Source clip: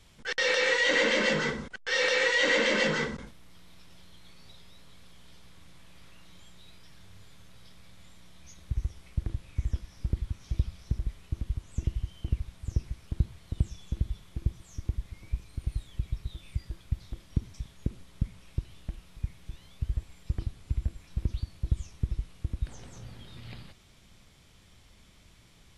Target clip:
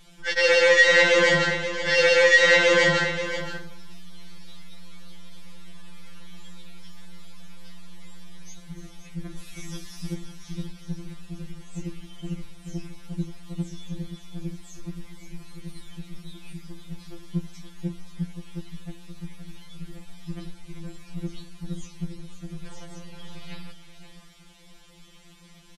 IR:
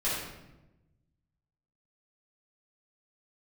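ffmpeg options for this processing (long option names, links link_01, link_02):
-filter_complex "[0:a]asettb=1/sr,asplit=3[link_01][link_02][link_03];[link_01]atrim=end=9.374[link_04];[link_02]atrim=start=9.37:end=10.14,asetpts=PTS-STARTPTS,afade=type=in:duration=0.004:curve=qsin,afade=type=out:start_time=0.766:duration=0.004:curve=qsin,highshelf=frequency=3200:gain=12[link_05];[link_03]atrim=start=10.136[link_06];[link_04][link_05]acrossfade=duration=0.004:curve1=hsin:curve2=qsin[link_07];[link_07][link_06]acrossfade=duration=0.004:curve1=qsin:curve2=hsin,asplit=2[link_08][link_09];[link_09]aecho=0:1:526:0.299[link_10];[link_08][link_10]amix=inputs=2:normalize=0,afftfilt=real='re*2.83*eq(mod(b,8),0)':imag='im*2.83*eq(mod(b,8),0)':win_size=2048:overlap=0.75,volume=8dB"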